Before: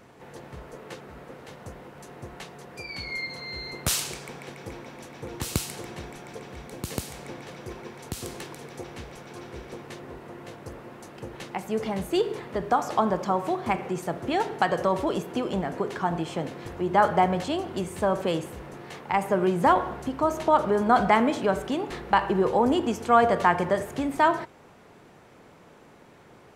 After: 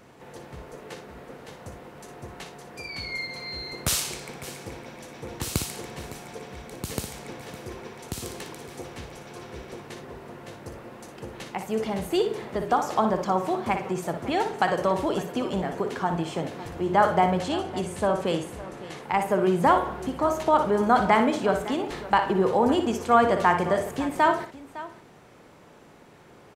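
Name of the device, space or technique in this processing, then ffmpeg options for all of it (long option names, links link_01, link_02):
exciter from parts: -filter_complex "[0:a]asplit=2[link_01][link_02];[link_02]highpass=2300,asoftclip=type=tanh:threshold=-36dB,volume=-14dB[link_03];[link_01][link_03]amix=inputs=2:normalize=0,asettb=1/sr,asplit=3[link_04][link_05][link_06];[link_04]atrim=end=17.404[link_07];[link_05]atrim=start=17.4:end=19.03,asetpts=PTS-STARTPTS,afade=type=in:duration=0.004:curve=qsin,afade=type=out:start_time=1.626:duration=0.004:curve=qsin,lowpass=frequency=12000:width=0.5412,lowpass=frequency=12000:width=1.3066[link_08];[link_06]atrim=start=19.026[link_09];[link_07][link_08]acrossfade=duration=0.004:curve1=hsin:curve2=qsin[link_10];[link_10][link_09]acrossfade=duration=0.004:curve1=qsin:curve2=hsin,aecho=1:1:59|558:0.376|0.15"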